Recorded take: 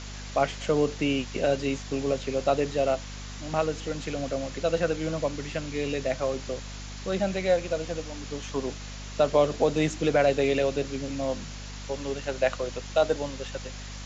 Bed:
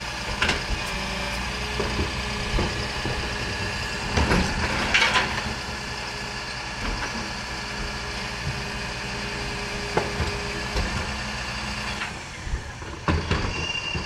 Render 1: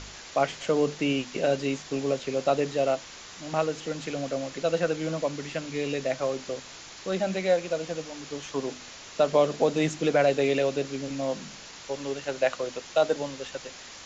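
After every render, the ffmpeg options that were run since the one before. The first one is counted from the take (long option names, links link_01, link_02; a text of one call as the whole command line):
ffmpeg -i in.wav -af "bandreject=frequency=50:width_type=h:width=4,bandreject=frequency=100:width_type=h:width=4,bandreject=frequency=150:width_type=h:width=4,bandreject=frequency=200:width_type=h:width=4,bandreject=frequency=250:width_type=h:width=4" out.wav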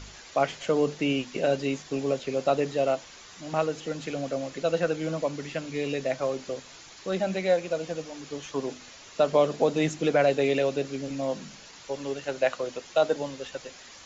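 ffmpeg -i in.wav -af "afftdn=noise_reduction=6:noise_floor=-45" out.wav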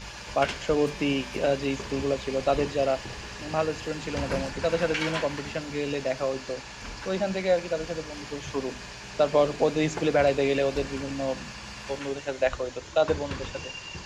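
ffmpeg -i in.wav -i bed.wav -filter_complex "[1:a]volume=-11.5dB[link_01];[0:a][link_01]amix=inputs=2:normalize=0" out.wav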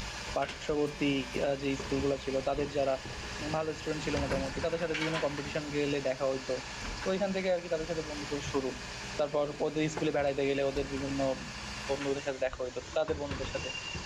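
ffmpeg -i in.wav -af "acompressor=mode=upward:threshold=-36dB:ratio=2.5,alimiter=limit=-20.5dB:level=0:latency=1:release=473" out.wav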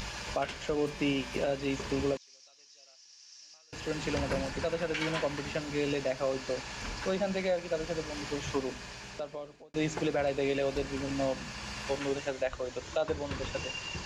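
ffmpeg -i in.wav -filter_complex "[0:a]asettb=1/sr,asplit=3[link_01][link_02][link_03];[link_01]atrim=end=2.174[link_04];[link_02]atrim=start=2.17:end=3.73,asetpts=PTS-STARTPTS,afade=type=in:duration=0.004:curve=qsin,afade=type=out:start_time=1.556:duration=0.004:curve=qsin,bandpass=frequency=5600:width_type=q:width=7.5[link_05];[link_03]atrim=start=3.726[link_06];[link_04][link_05]acrossfade=duration=0.004:curve1=hsin:curve2=qsin[link_07];[link_07][link_06]acrossfade=duration=0.004:curve1=qsin:curve2=hsin,asplit=2[link_08][link_09];[link_08]atrim=end=9.74,asetpts=PTS-STARTPTS,afade=type=out:start_time=8.53:duration=1.21[link_10];[link_09]atrim=start=9.74,asetpts=PTS-STARTPTS,afade=type=in:duration=0.004:curve=hsin[link_11];[link_10][link_11]concat=n=2:v=0:a=1" out.wav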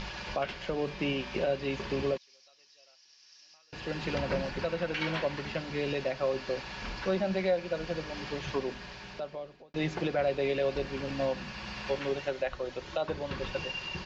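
ffmpeg -i in.wav -af "lowpass=frequency=4900:width=0.5412,lowpass=frequency=4900:width=1.3066,aecho=1:1:5.4:0.34" out.wav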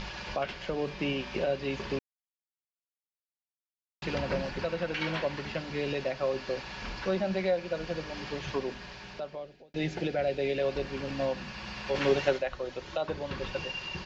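ffmpeg -i in.wav -filter_complex "[0:a]asettb=1/sr,asplit=3[link_01][link_02][link_03];[link_01]atrim=end=9.454[link_04];[link_02]atrim=start=9.45:end=10.59,asetpts=PTS-STARTPTS,afade=type=in:duration=0.004:curve=qsin,afade=type=out:start_time=1.136:duration=0.004:curve=qsin,equalizer=frequency=1100:width_type=o:width=0.42:gain=-13[link_05];[link_03]atrim=start=10.586[link_06];[link_04][link_05]acrossfade=duration=0.004:curve1=hsin:curve2=qsin[link_07];[link_07][link_06]acrossfade=duration=0.004:curve1=qsin:curve2=hsin,asplit=3[link_08][link_09][link_10];[link_08]afade=type=out:start_time=11.94:duration=0.02[link_11];[link_09]acontrast=81,afade=type=in:start_time=11.94:duration=0.02,afade=type=out:start_time=12.37:duration=0.02[link_12];[link_10]afade=type=in:start_time=12.37:duration=0.02[link_13];[link_11][link_12][link_13]amix=inputs=3:normalize=0,asplit=3[link_14][link_15][link_16];[link_14]atrim=end=1.99,asetpts=PTS-STARTPTS,afade=type=out:start_time=1.986:duration=0.004:curve=hsin[link_17];[link_15]atrim=start=1.99:end=4.02,asetpts=PTS-STARTPTS,volume=0[link_18];[link_16]atrim=start=4.02,asetpts=PTS-STARTPTS,afade=type=in:duration=0.004:curve=hsin[link_19];[link_17][link_18][link_19]concat=n=3:v=0:a=1" out.wav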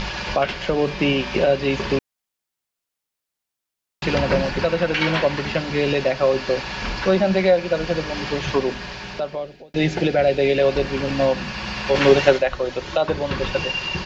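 ffmpeg -i in.wav -af "volume=12dB" out.wav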